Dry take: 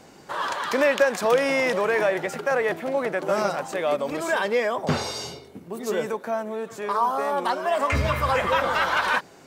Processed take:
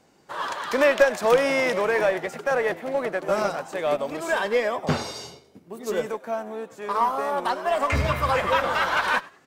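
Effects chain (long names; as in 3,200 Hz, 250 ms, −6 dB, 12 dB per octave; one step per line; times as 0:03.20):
in parallel at −5.5 dB: asymmetric clip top −23.5 dBFS
on the sum: echo with shifted repeats 99 ms, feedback 39%, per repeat +75 Hz, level −15 dB
expander for the loud parts 1.5 to 1, over −41 dBFS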